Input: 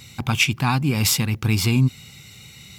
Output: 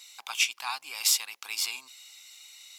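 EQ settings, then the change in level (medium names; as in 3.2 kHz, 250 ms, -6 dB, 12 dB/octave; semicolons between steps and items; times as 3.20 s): high-pass 970 Hz 24 dB/octave; peaking EQ 1.6 kHz -13.5 dB 2.2 oct; treble shelf 11 kHz -11.5 dB; +2.5 dB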